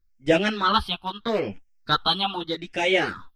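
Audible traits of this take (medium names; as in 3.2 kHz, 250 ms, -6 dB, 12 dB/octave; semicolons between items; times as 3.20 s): phasing stages 6, 0.79 Hz, lowest notch 510–1100 Hz; tremolo triangle 0.68 Hz, depth 75%; a shimmering, thickened sound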